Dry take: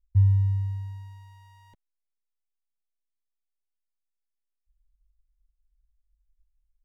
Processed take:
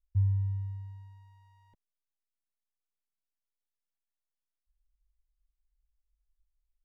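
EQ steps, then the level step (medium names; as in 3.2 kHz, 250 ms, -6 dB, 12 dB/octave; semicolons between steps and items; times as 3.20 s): treble shelf 2.3 kHz -9 dB; -7.5 dB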